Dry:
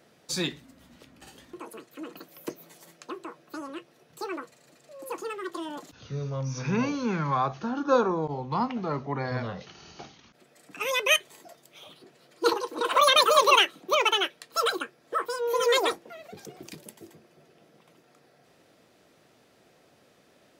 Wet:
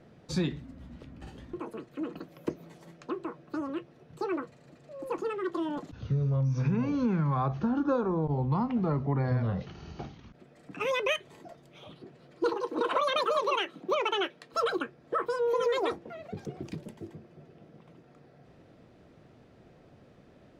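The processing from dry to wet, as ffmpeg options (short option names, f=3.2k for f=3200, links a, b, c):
-filter_complex "[0:a]asettb=1/sr,asplit=3[a][b][c];[a]atrim=end=12.464[d];[b]atrim=start=12.46:end=14.54,asetpts=PTS-STARTPTS,afade=t=in:d=0.004:c=qsin,afade=t=out:st=2.076:d=0.004:c=qsin,highpass=160[e];[c]atrim=start=14.536[f];[d][e]acrossfade=d=0.004:c1=hsin:c2=qsin[g];[g][f]acrossfade=d=0.004:c1=qsin:c2=hsin,aemphasis=mode=reproduction:type=riaa,acompressor=threshold=-24dB:ratio=12"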